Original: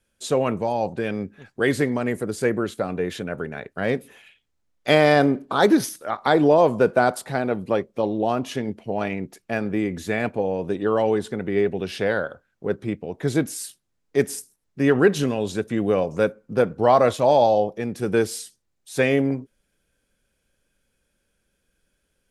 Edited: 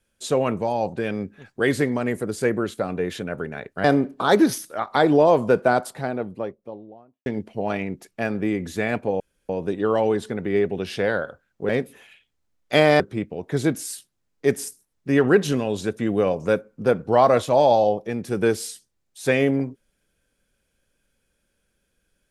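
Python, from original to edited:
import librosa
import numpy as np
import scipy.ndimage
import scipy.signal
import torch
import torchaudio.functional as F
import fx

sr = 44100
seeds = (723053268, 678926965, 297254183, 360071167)

y = fx.studio_fade_out(x, sr, start_s=6.81, length_s=1.76)
y = fx.edit(y, sr, fx.move(start_s=3.84, length_s=1.31, to_s=12.71),
    fx.insert_room_tone(at_s=10.51, length_s=0.29), tone=tone)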